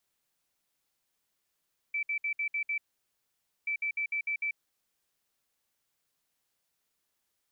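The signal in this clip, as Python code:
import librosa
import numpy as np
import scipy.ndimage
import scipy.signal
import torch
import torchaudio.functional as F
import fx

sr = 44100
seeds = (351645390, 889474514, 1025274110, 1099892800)

y = fx.beep_pattern(sr, wave='sine', hz=2320.0, on_s=0.09, off_s=0.06, beeps=6, pause_s=0.89, groups=2, level_db=-28.5)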